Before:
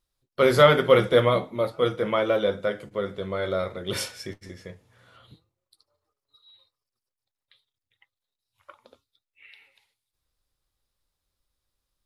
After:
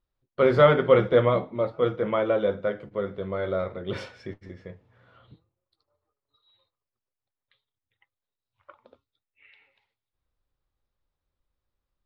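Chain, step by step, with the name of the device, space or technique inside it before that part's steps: phone in a pocket (low-pass 3.8 kHz 12 dB/octave; treble shelf 2.4 kHz -10 dB)

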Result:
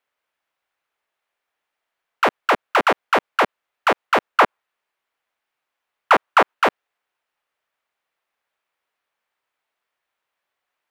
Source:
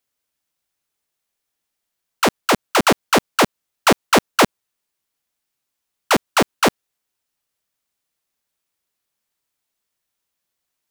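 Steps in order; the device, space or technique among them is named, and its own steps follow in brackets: DJ mixer with the lows and highs turned down (three-band isolator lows -16 dB, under 460 Hz, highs -19 dB, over 2.8 kHz; peak limiter -14.5 dBFS, peak gain reduction 9.5 dB); 4.32–6.53 s: dynamic bell 1.1 kHz, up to +5 dB, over -37 dBFS, Q 0.93; trim +7.5 dB

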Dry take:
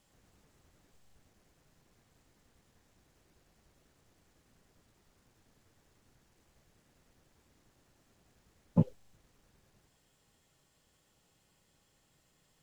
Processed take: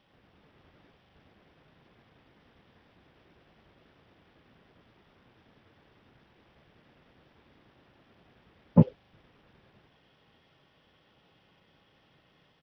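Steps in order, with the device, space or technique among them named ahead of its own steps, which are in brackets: Bluetooth headset (high-pass 120 Hz 6 dB/octave; level rider gain up to 3 dB; resampled via 8 kHz; trim +6.5 dB; SBC 64 kbps 44.1 kHz)

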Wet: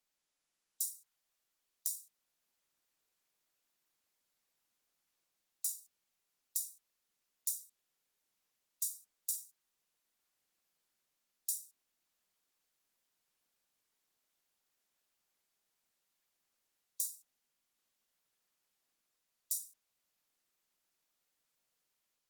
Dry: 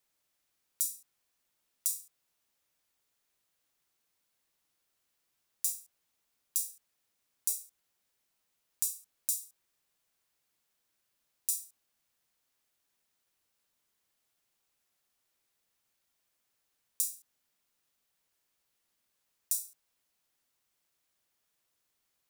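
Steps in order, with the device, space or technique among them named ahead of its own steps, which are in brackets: 0.98–1.93 s: high-pass 650 Hz -> 220 Hz 12 dB/octave; noise-suppressed video call (high-pass 150 Hz 24 dB/octave; spectral gate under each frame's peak -30 dB strong; level rider gain up to 4 dB; trim -6 dB; Opus 16 kbps 48 kHz)

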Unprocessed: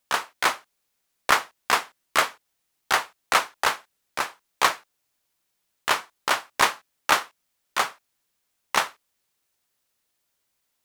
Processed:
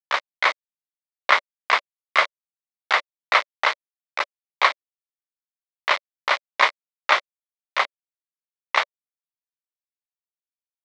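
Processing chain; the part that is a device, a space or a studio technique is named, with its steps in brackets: hand-held game console (bit crusher 4-bit; cabinet simulation 470–4900 Hz, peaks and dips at 580 Hz +8 dB, 1.1 kHz +5 dB, 2.1 kHz +10 dB, 3.7 kHz +4 dB); trim -2 dB

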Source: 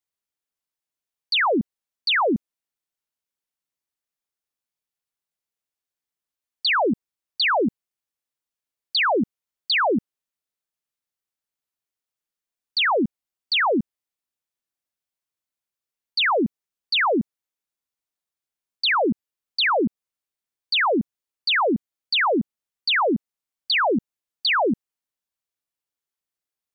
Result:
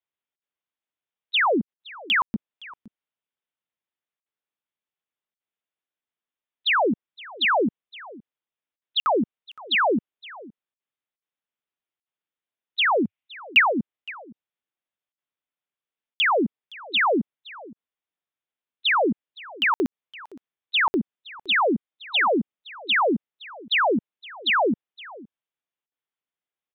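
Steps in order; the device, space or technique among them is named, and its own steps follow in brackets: call with lost packets (high-pass 160 Hz 6 dB/octave; resampled via 8 kHz; lost packets of 60 ms random); 13.03–13.80 s: fifteen-band graphic EQ 100 Hz +3 dB, 400 Hz -7 dB, 2.5 kHz +9 dB; delay 516 ms -20.5 dB

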